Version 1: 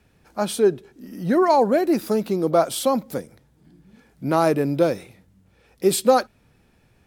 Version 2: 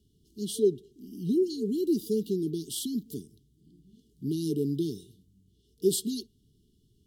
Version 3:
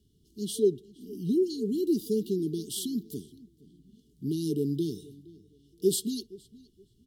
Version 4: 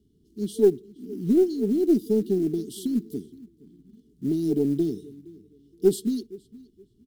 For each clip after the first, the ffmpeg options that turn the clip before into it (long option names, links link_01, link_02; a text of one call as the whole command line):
ffmpeg -i in.wav -af "afftfilt=real='re*(1-between(b*sr/4096,450,2800))':imag='im*(1-between(b*sr/4096,450,2800))':win_size=4096:overlap=0.75,equalizer=frequency=2200:width=5:gain=-9.5,volume=-6dB" out.wav
ffmpeg -i in.wav -filter_complex "[0:a]asplit=2[link_01][link_02];[link_02]adelay=469,lowpass=frequency=2900:poles=1,volume=-21dB,asplit=2[link_03][link_04];[link_04]adelay=469,lowpass=frequency=2900:poles=1,volume=0.25[link_05];[link_01][link_03][link_05]amix=inputs=3:normalize=0" out.wav
ffmpeg -i in.wav -af "firequalizer=gain_entry='entry(140,0);entry(230,7);entry(980,0);entry(2400,-6)':delay=0.05:min_phase=1,aeval=exprs='0.398*(cos(1*acos(clip(val(0)/0.398,-1,1)))-cos(1*PI/2))+0.00891*(cos(4*acos(clip(val(0)/0.398,-1,1)))-cos(4*PI/2))':channel_layout=same,acrusher=bits=8:mode=log:mix=0:aa=0.000001" out.wav